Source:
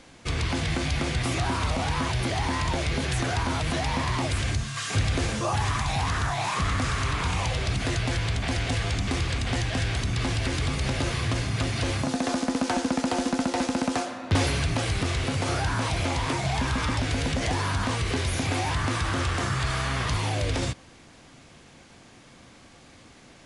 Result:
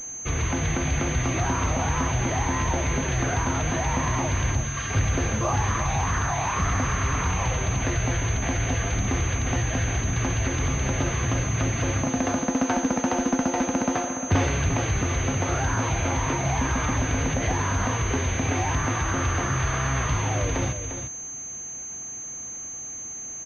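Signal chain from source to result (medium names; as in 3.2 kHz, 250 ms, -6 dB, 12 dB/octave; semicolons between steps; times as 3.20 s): delay 350 ms -9 dB; class-D stage that switches slowly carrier 6.3 kHz; trim +1.5 dB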